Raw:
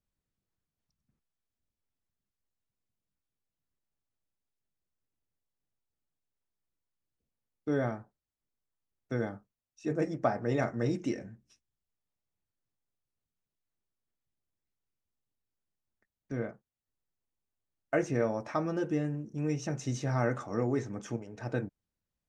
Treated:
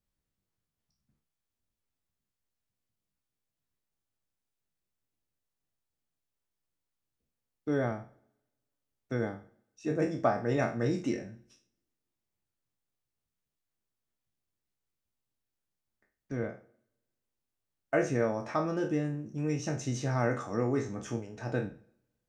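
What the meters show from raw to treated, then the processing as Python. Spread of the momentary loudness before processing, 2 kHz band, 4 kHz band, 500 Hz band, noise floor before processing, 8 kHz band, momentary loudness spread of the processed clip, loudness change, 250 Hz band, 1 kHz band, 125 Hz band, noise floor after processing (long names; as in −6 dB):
10 LU, +1.5 dB, +2.0 dB, +1.0 dB, below −85 dBFS, +2.0 dB, 10 LU, +1.0 dB, +0.5 dB, +1.5 dB, +0.5 dB, below −85 dBFS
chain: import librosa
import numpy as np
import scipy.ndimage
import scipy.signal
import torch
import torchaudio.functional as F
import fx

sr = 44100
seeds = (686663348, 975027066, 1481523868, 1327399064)

y = fx.spec_trails(x, sr, decay_s=0.35)
y = fx.rev_double_slope(y, sr, seeds[0], early_s=0.83, late_s=2.1, knee_db=-26, drr_db=20.0)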